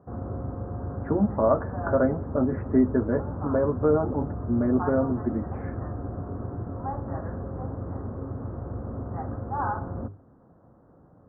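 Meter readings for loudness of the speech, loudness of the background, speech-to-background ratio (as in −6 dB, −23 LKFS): −25.5 LKFS, −34.0 LKFS, 8.5 dB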